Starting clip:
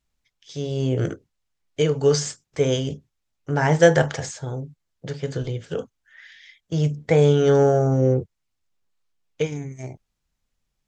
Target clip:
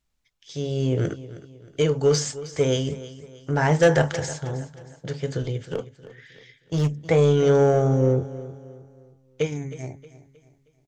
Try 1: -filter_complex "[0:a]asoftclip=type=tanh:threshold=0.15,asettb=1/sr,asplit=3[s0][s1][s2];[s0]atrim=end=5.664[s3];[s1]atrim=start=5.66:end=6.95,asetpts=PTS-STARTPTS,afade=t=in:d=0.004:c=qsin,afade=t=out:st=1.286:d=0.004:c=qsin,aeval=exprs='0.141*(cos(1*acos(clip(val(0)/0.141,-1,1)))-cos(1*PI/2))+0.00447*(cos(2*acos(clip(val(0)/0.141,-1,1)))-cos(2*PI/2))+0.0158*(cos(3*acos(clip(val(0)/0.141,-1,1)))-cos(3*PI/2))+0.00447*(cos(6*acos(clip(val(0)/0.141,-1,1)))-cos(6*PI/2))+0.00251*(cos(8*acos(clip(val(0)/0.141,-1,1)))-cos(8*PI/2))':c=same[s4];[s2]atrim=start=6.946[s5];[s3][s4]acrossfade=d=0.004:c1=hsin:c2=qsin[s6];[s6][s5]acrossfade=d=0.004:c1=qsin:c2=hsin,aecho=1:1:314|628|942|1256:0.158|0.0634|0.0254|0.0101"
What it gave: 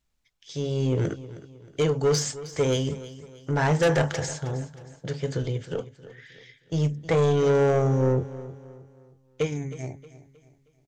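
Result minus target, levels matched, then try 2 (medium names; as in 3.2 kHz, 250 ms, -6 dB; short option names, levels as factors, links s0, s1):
saturation: distortion +8 dB
-filter_complex "[0:a]asoftclip=type=tanh:threshold=0.355,asettb=1/sr,asplit=3[s0][s1][s2];[s0]atrim=end=5.664[s3];[s1]atrim=start=5.66:end=6.95,asetpts=PTS-STARTPTS,afade=t=in:d=0.004:c=qsin,afade=t=out:st=1.286:d=0.004:c=qsin,aeval=exprs='0.141*(cos(1*acos(clip(val(0)/0.141,-1,1)))-cos(1*PI/2))+0.00447*(cos(2*acos(clip(val(0)/0.141,-1,1)))-cos(2*PI/2))+0.0158*(cos(3*acos(clip(val(0)/0.141,-1,1)))-cos(3*PI/2))+0.00447*(cos(6*acos(clip(val(0)/0.141,-1,1)))-cos(6*PI/2))+0.00251*(cos(8*acos(clip(val(0)/0.141,-1,1)))-cos(8*PI/2))':c=same[s4];[s2]atrim=start=6.946[s5];[s3][s4]acrossfade=d=0.004:c1=hsin:c2=qsin[s6];[s6][s5]acrossfade=d=0.004:c1=qsin:c2=hsin,aecho=1:1:314|628|942|1256:0.158|0.0634|0.0254|0.0101"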